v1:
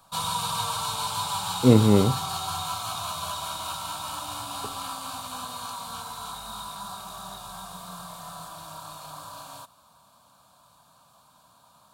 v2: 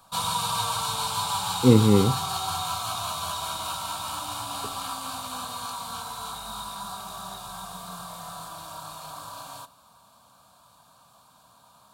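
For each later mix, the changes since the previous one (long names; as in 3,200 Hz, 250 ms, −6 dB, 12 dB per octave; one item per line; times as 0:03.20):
speech: add linear-phase brick-wall band-stop 560–1,800 Hz
background: send on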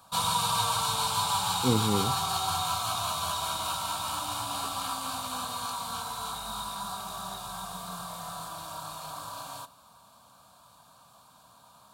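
speech −10.0 dB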